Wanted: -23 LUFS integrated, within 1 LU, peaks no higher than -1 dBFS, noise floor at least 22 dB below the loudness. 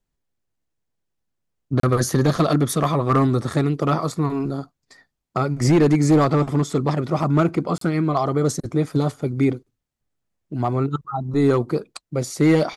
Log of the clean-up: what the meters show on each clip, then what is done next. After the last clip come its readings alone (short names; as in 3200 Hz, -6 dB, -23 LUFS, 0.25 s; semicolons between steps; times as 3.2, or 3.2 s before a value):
clipped 0.8%; flat tops at -10.5 dBFS; dropouts 2; longest dropout 33 ms; loudness -21.0 LUFS; peak -10.5 dBFS; loudness target -23.0 LUFS
-> clip repair -10.5 dBFS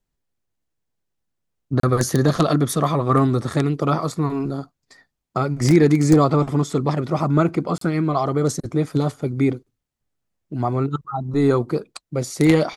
clipped 0.0%; dropouts 2; longest dropout 33 ms
-> interpolate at 1.8/7.78, 33 ms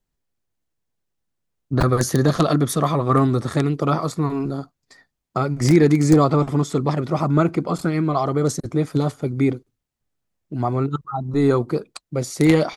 dropouts 0; loudness -20.5 LUFS; peak -1.5 dBFS; loudness target -23.0 LUFS
-> gain -2.5 dB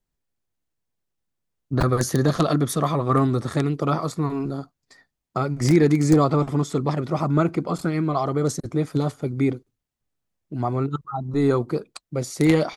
loudness -23.0 LUFS; peak -4.0 dBFS; noise floor -81 dBFS